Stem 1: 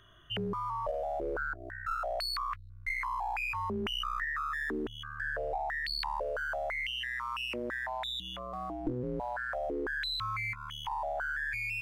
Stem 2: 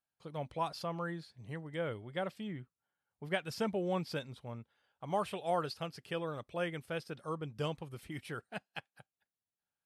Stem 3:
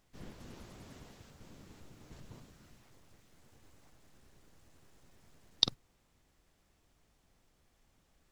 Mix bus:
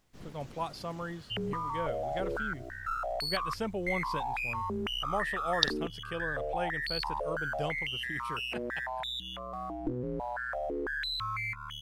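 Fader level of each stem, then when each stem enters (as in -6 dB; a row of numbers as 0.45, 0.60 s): 0.0, 0.0, +0.5 dB; 1.00, 0.00, 0.00 s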